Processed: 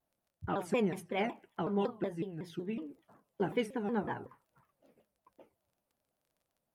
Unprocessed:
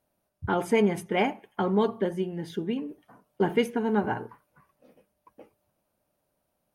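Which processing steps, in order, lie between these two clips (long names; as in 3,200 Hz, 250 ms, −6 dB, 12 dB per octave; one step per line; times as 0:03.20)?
surface crackle 21 per second −52 dBFS
pitch modulation by a square or saw wave saw down 5.4 Hz, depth 250 cents
level −8.5 dB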